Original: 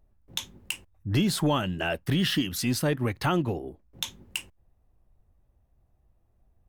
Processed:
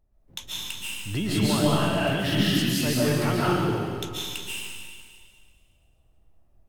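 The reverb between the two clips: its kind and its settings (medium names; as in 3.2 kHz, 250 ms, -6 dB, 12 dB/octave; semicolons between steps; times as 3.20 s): algorithmic reverb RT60 1.9 s, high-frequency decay 1×, pre-delay 100 ms, DRR -8 dB; trim -5 dB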